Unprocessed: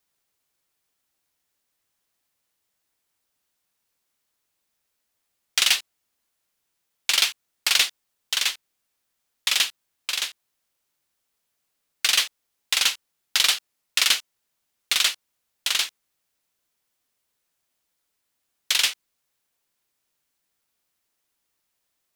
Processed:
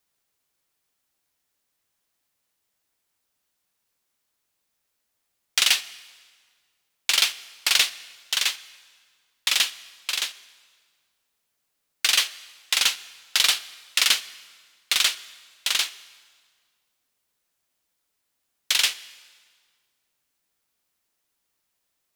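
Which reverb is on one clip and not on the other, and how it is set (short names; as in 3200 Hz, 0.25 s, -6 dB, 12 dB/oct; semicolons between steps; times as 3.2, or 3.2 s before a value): plate-style reverb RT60 1.8 s, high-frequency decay 0.85×, DRR 16.5 dB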